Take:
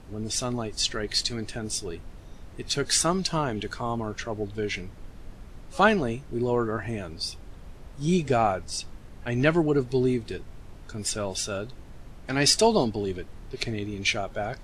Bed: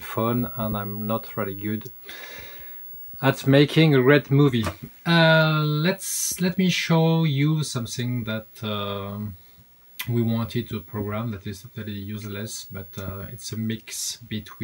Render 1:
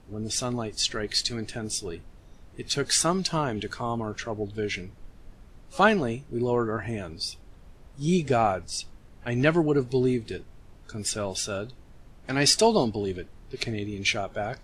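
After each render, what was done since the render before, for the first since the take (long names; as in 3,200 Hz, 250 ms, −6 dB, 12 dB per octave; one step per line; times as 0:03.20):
noise reduction from a noise print 6 dB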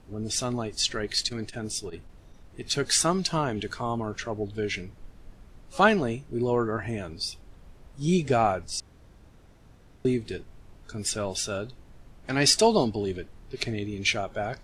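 0:01.06–0:02.66: saturating transformer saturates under 310 Hz
0:08.80–0:10.05: fill with room tone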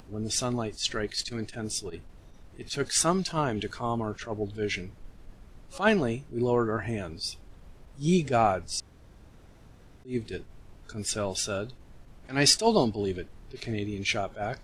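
upward compression, threshold −47 dBFS
level that may rise only so fast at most 220 dB per second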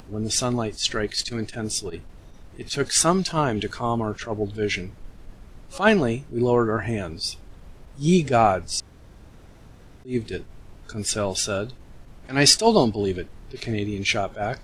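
level +5.5 dB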